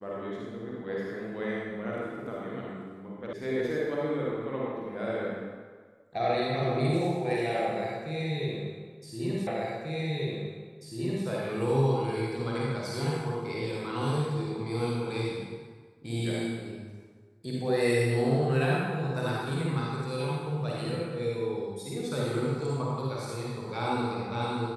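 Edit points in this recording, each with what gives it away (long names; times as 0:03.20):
0:03.33: cut off before it has died away
0:09.47: the same again, the last 1.79 s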